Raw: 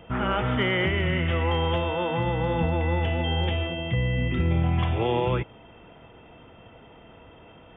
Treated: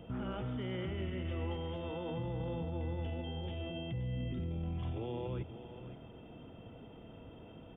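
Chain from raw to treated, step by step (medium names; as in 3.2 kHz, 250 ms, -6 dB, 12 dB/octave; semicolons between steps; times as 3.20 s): graphic EQ 125/250/1000/2000 Hz +3/+4/-5/-9 dB; peak limiter -28.5 dBFS, peak gain reduction 17 dB; 0.97–1.56 s: doubling 21 ms -4.5 dB; delay 526 ms -12 dB; trim -3.5 dB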